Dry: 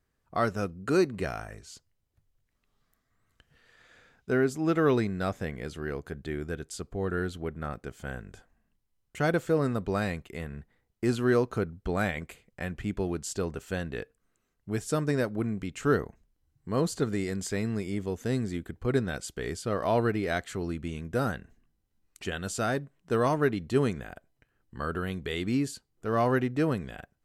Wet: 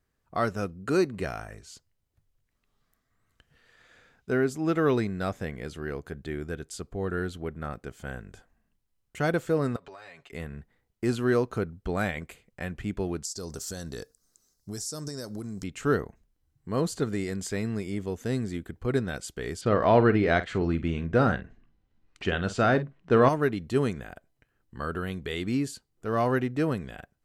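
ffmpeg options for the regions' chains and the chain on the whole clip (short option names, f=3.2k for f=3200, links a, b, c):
-filter_complex "[0:a]asettb=1/sr,asplit=3[a][b][c];[a]atrim=end=9.764[d];[b]atrim=start=9.76:end=10.32,asetpts=PTS-STARTPTS,afade=t=in:d=0.004:c=qsin,afade=t=out:st=0.556:d=0.004:c=qsin,acrossover=split=510 7100:gain=0.126 1 0.2[e][f][g];[e][f][g]amix=inputs=3:normalize=0,aecho=1:1:7.2:0.87,atrim=end_sample=24696,acompressor=threshold=-42dB:ratio=16:attack=3.2:release=140:knee=1:detection=peak[h];[c]atrim=start=10.316[i];[d][h]acrossfade=d=0.004:c1=hsin:c2=qsin[j];[j][i]acrossfade=d=0.004:c1=qsin:c2=hsin,asettb=1/sr,asplit=3[k][l][m];[k]atrim=end=13.254[n];[l]atrim=start=13.25:end=15.64,asetpts=PTS-STARTPTS,afade=t=in:d=0.004:c=qsin,afade=t=out:st=2.386:d=0.004:c=qsin,highshelf=f=3.7k:t=q:w=3:g=12.5,acompressor=threshold=-31dB:ratio=16:attack=3.2:release=140:knee=1:detection=peak[o];[m]atrim=start=15.636[p];[n][o]acrossfade=d=0.004:c1=hsin:c2=qsin[q];[q][p]acrossfade=d=0.004:c1=qsin:c2=hsin,asettb=1/sr,asplit=3[r][s][t];[r]atrim=end=19.614[u];[s]atrim=start=19.61:end=23.29,asetpts=PTS-STARTPTS,afade=t=in:d=0.004:c=qsin,afade=t=out:st=3.676:d=0.004:c=qsin,lowpass=3.4k,acontrast=57,asplit=2[v][w];[w]adelay=48,volume=-13dB[x];[v][x]amix=inputs=2:normalize=0,atrim=end_sample=162288[y];[t]atrim=start=23.286[z];[u][y]acrossfade=d=0.004:c1=hsin:c2=qsin[aa];[aa][z]acrossfade=d=0.004:c1=qsin:c2=hsin"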